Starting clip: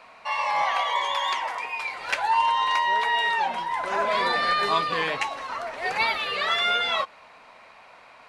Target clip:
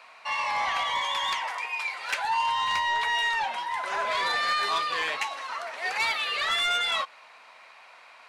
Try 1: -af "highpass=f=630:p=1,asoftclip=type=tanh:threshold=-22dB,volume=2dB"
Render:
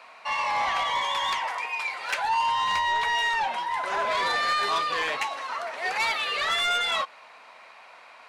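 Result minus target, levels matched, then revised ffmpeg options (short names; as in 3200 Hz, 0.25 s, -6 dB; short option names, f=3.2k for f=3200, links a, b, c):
500 Hz band +2.5 dB
-af "highpass=f=1.3k:p=1,asoftclip=type=tanh:threshold=-22dB,volume=2dB"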